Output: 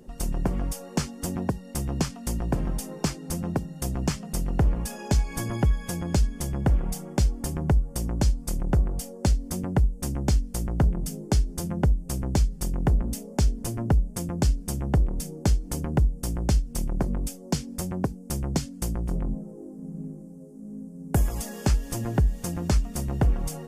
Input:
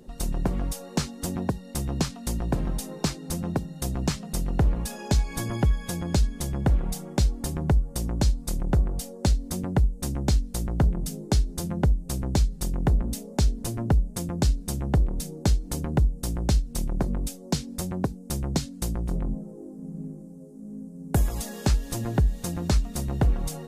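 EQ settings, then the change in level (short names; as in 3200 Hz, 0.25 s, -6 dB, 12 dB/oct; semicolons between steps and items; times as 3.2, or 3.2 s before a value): bell 3900 Hz -10.5 dB 0.22 oct; 0.0 dB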